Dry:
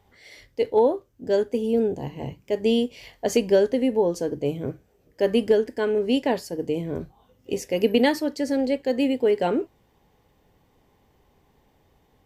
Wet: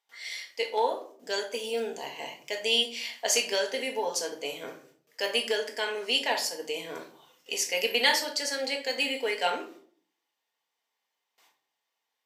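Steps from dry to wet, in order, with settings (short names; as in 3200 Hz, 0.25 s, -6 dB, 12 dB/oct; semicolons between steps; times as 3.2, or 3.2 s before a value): gate with hold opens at -50 dBFS; HPF 1100 Hz 12 dB/oct; bell 5500 Hz +6.5 dB 2.2 oct; in parallel at -3 dB: compressor, threshold -38 dBFS, peak gain reduction 18 dB; on the sum: reverb RT60 0.50 s, pre-delay 4 ms, DRR 2 dB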